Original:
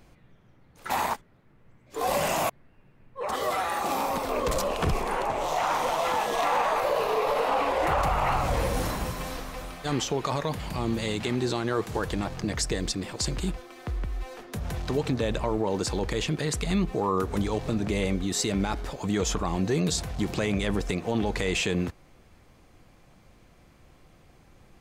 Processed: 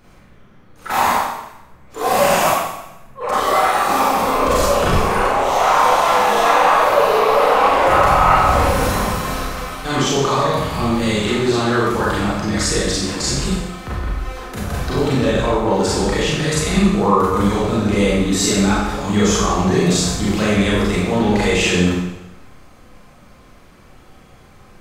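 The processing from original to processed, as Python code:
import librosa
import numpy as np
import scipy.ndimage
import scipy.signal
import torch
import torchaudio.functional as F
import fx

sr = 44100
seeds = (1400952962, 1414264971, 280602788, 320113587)

y = fx.peak_eq(x, sr, hz=1300.0, db=5.0, octaves=0.61)
y = fx.rev_schroeder(y, sr, rt60_s=0.92, comb_ms=30, drr_db=-7.5)
y = y * 10.0 ** (2.5 / 20.0)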